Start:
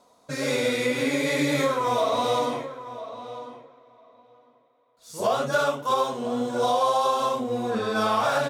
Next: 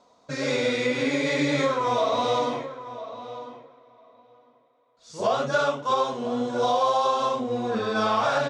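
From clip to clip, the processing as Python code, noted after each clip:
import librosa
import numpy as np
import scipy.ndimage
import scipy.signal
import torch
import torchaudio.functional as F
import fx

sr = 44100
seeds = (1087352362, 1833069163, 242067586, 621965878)

y = scipy.signal.sosfilt(scipy.signal.butter(4, 6700.0, 'lowpass', fs=sr, output='sos'), x)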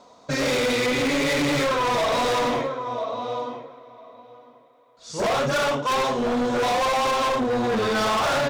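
y = np.clip(x, -10.0 ** (-29.0 / 20.0), 10.0 ** (-29.0 / 20.0))
y = y * 10.0 ** (8.5 / 20.0)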